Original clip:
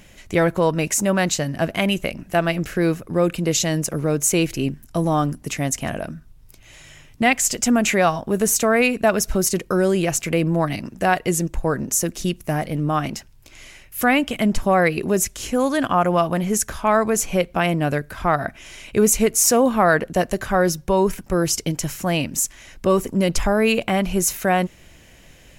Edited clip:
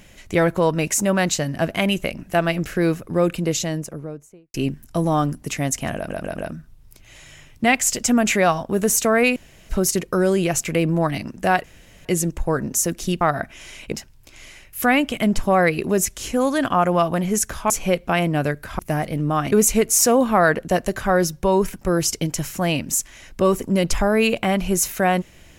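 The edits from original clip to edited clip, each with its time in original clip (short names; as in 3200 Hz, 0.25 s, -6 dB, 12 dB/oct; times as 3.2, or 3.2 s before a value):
3.23–4.54 studio fade out
5.96 stutter 0.14 s, 4 plays
8.94–9.27 room tone
11.22 insert room tone 0.41 s
12.38–13.11 swap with 18.26–18.97
16.89–17.17 cut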